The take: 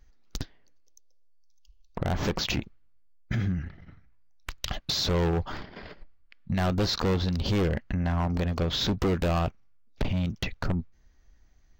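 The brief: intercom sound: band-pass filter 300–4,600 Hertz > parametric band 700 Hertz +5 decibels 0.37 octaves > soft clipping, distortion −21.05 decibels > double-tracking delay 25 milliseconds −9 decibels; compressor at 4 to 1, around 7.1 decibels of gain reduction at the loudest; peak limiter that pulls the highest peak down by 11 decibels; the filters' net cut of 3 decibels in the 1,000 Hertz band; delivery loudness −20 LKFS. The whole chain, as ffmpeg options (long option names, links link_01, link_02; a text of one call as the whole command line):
ffmpeg -i in.wav -filter_complex "[0:a]equalizer=frequency=1000:width_type=o:gain=-8,acompressor=threshold=-32dB:ratio=4,alimiter=level_in=5dB:limit=-24dB:level=0:latency=1,volume=-5dB,highpass=300,lowpass=4600,equalizer=frequency=700:width_type=o:width=0.37:gain=5,asoftclip=threshold=-29.5dB,asplit=2[link_01][link_02];[link_02]adelay=25,volume=-9dB[link_03];[link_01][link_03]amix=inputs=2:normalize=0,volume=23dB" out.wav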